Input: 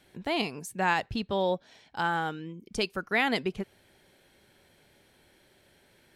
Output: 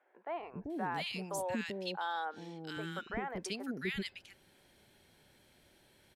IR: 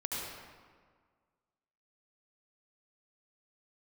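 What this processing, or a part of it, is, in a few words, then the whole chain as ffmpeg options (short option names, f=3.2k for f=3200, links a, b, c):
stacked limiters: -filter_complex "[0:a]asettb=1/sr,asplit=3[a][b][c];[a]atrim=end=1.084[d];[b]atrim=start=1.08:end=2.38,asetpts=PTS-STARTPTS,afade=t=in:d=0.004:c=qsin,afade=t=out:st=1.296:d=0.004:c=qsin,highpass=210[e];[c]atrim=start=2.376[f];[d][e]acrossfade=d=0.004:c1=hsin:c2=qsin[g];[g][f]acrossfade=d=0.004:c1=qsin:c2=hsin,alimiter=limit=-19.5dB:level=0:latency=1:release=28,alimiter=limit=-22.5dB:level=0:latency=1:release=212,acrossover=split=460|1700[h][i][j];[h]adelay=390[k];[j]adelay=700[l];[k][i][l]amix=inputs=3:normalize=0,volume=-2dB"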